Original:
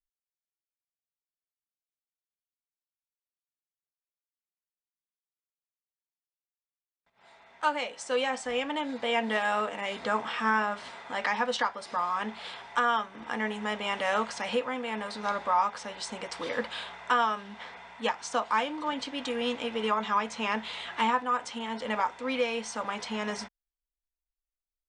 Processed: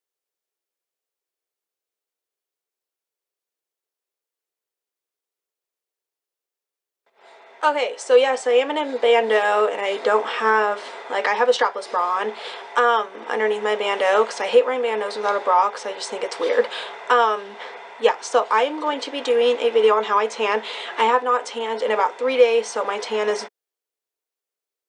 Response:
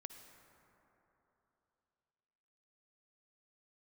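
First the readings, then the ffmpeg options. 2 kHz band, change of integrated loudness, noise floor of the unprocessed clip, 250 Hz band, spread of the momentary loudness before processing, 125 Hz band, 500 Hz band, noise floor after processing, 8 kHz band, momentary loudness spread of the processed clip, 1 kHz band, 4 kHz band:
+7.0 dB, +10.0 dB, under -85 dBFS, +1.0 dB, 10 LU, no reading, +15.0 dB, under -85 dBFS, +6.5 dB, 10 LU, +8.0 dB, +6.5 dB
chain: -af "acontrast=69,highpass=f=420:t=q:w=3.5"

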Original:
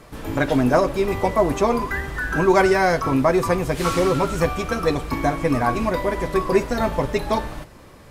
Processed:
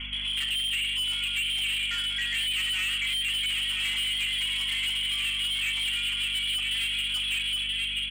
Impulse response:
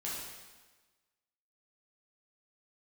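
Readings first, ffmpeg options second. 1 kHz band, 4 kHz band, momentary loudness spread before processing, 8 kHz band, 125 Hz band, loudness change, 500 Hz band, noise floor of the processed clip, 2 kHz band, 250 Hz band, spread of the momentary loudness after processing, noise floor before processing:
-27.5 dB, +14.5 dB, 7 LU, +0.5 dB, -21.5 dB, -5.0 dB, under -40 dB, -31 dBFS, -2.5 dB, -30.5 dB, 1 LU, -45 dBFS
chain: -filter_complex "[0:a]asplit=2[s0][s1];[s1]adelay=980,lowpass=f=1800:p=1,volume=0.501,asplit=2[s2][s3];[s3]adelay=980,lowpass=f=1800:p=1,volume=0.43,asplit=2[s4][s5];[s5]adelay=980,lowpass=f=1800:p=1,volume=0.43,asplit=2[s6][s7];[s7]adelay=980,lowpass=f=1800:p=1,volume=0.43,asplit=2[s8][s9];[s9]adelay=980,lowpass=f=1800:p=1,volume=0.43[s10];[s0][s2][s4][s6][s8][s10]amix=inputs=6:normalize=0,asplit=2[s11][s12];[1:a]atrim=start_sample=2205,lowpass=1600[s13];[s12][s13]afir=irnorm=-1:irlink=0,volume=0.376[s14];[s11][s14]amix=inputs=2:normalize=0,lowpass=f=2900:t=q:w=0.5098,lowpass=f=2900:t=q:w=0.6013,lowpass=f=2900:t=q:w=0.9,lowpass=f=2900:t=q:w=2.563,afreqshift=-3400,bandreject=f=1700:w=5.5,areverse,acompressor=mode=upward:threshold=0.0891:ratio=2.5,areverse,alimiter=limit=0.376:level=0:latency=1:release=146,asoftclip=type=tanh:threshold=0.0708,aeval=exprs='val(0)+0.0112*(sin(2*PI*50*n/s)+sin(2*PI*2*50*n/s)/2+sin(2*PI*3*50*n/s)/3+sin(2*PI*4*50*n/s)/4+sin(2*PI*5*50*n/s)/5)':c=same,acompressor=threshold=0.0316:ratio=3,equalizer=f=125:t=o:w=1:g=-10,equalizer=f=250:t=o:w=1:g=4,equalizer=f=500:t=o:w=1:g=-11,equalizer=f=1000:t=o:w=1:g=-6,equalizer=f=2000:t=o:w=1:g=5"

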